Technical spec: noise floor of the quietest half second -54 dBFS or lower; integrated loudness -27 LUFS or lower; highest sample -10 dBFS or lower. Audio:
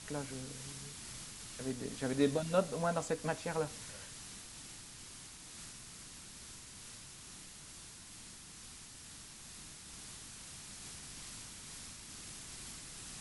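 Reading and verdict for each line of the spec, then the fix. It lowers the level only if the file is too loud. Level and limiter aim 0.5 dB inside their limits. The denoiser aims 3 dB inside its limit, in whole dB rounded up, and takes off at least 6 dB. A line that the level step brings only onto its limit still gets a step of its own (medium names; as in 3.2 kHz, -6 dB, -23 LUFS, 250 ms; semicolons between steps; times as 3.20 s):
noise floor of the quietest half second -52 dBFS: fail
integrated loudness -42.0 LUFS: pass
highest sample -18.0 dBFS: pass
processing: noise reduction 6 dB, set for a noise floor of -52 dBFS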